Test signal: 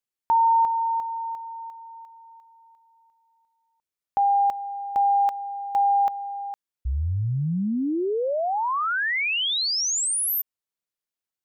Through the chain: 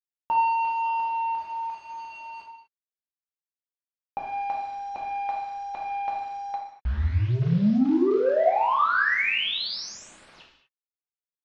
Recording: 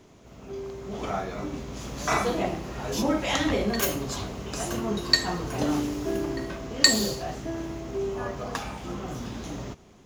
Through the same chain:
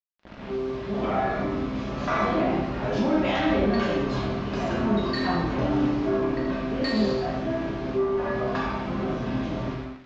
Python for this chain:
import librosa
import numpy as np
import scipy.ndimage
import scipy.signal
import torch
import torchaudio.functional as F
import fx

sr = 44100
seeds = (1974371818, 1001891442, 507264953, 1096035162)

p1 = fx.over_compress(x, sr, threshold_db=-27.0, ratio=-0.5)
p2 = x + (p1 * 10.0 ** (-1.0 / 20.0))
p3 = fx.comb_fb(p2, sr, f0_hz=130.0, decay_s=0.83, harmonics='all', damping=0.3, mix_pct=80)
p4 = fx.quant_dither(p3, sr, seeds[0], bits=8, dither='none')
p5 = 10.0 ** (-29.0 / 20.0) * np.tanh(p4 / 10.0 ** (-29.0 / 20.0))
p6 = scipy.ndimage.gaussian_filter1d(p5, 2.4, mode='constant')
p7 = fx.rev_gated(p6, sr, seeds[1], gate_ms=270, shape='falling', drr_db=-1.5)
y = p7 * 10.0 ** (8.5 / 20.0)